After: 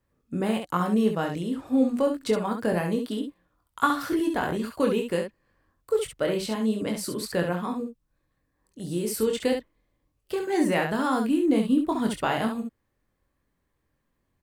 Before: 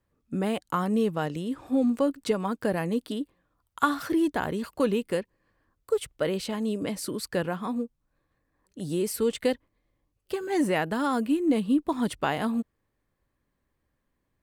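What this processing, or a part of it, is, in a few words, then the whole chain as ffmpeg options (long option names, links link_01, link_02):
slapback doubling: -filter_complex "[0:a]asettb=1/sr,asplit=3[link_01][link_02][link_03];[link_01]atrim=end=7.804[link_04];[link_02]atrim=start=7.8:end=9.05,asetpts=PTS-STARTPTS,afade=type=in:duration=0.004:curve=qsin,afade=type=out:start_time=1.246:duration=0.004:curve=qsin,equalizer=frequency=860:width=0.31:gain=-4[link_05];[link_03]atrim=start=9.046[link_06];[link_04][link_05]acrossfade=duration=0.004:curve1=hsin:curve2=qsin[link_07];[link_07][link_06]acrossfade=duration=0.004:curve1=qsin:curve2=hsin,asplit=3[link_08][link_09][link_10];[link_09]adelay=23,volume=-5.5dB[link_11];[link_10]adelay=68,volume=-6dB[link_12];[link_08][link_11][link_12]amix=inputs=3:normalize=0"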